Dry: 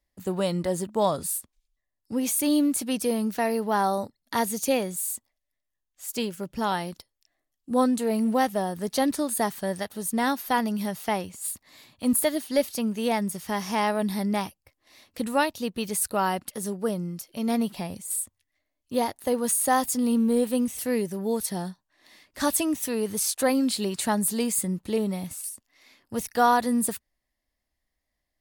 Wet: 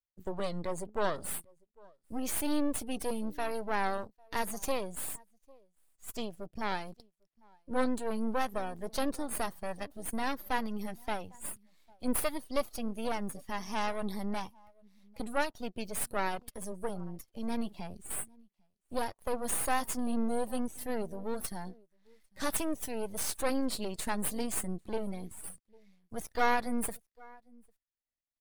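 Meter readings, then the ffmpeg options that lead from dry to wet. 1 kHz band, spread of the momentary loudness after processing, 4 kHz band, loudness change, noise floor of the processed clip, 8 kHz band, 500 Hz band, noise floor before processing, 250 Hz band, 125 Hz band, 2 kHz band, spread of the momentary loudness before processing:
-8.5 dB, 11 LU, -8.5 dB, -9.0 dB, -84 dBFS, -9.5 dB, -9.0 dB, -82 dBFS, -10.5 dB, -10.0 dB, -5.5 dB, 9 LU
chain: -af "aecho=1:1:799:0.0631,aeval=exprs='max(val(0),0)':c=same,afftdn=nr=14:nf=-46,volume=-3.5dB"

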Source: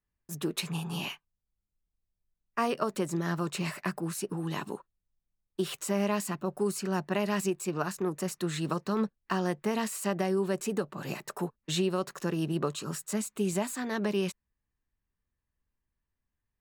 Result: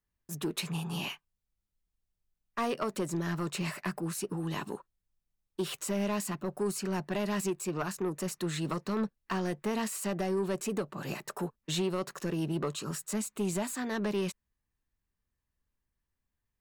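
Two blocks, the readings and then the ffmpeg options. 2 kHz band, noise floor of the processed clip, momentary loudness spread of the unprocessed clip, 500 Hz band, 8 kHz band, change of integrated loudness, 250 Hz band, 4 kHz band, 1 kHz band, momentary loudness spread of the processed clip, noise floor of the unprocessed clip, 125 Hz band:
-2.0 dB, under -85 dBFS, 8 LU, -2.5 dB, -0.5 dB, -2.0 dB, -2.0 dB, -1.5 dB, -3.0 dB, 6 LU, under -85 dBFS, -1.5 dB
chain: -af "asoftclip=type=tanh:threshold=-24dB"

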